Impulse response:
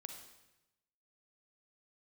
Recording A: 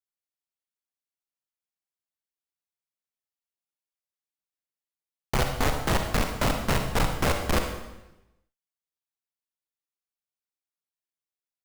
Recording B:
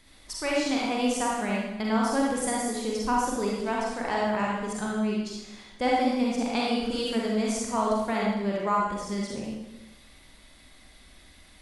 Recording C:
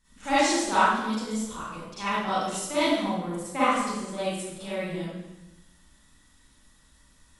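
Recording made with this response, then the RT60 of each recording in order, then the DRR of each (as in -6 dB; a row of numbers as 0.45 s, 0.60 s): A; 0.95 s, 0.95 s, 0.95 s; 4.5 dB, -4.0 dB, -13.5 dB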